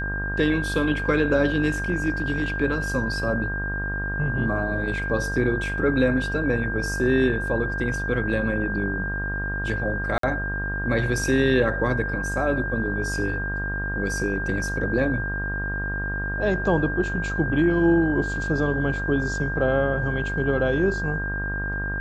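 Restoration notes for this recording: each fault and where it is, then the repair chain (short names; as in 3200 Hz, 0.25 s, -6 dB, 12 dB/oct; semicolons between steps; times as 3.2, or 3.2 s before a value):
buzz 50 Hz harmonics 32 -30 dBFS
tone 1600 Hz -28 dBFS
10.18–10.23 gap 53 ms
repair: de-hum 50 Hz, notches 32; notch 1600 Hz, Q 30; interpolate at 10.18, 53 ms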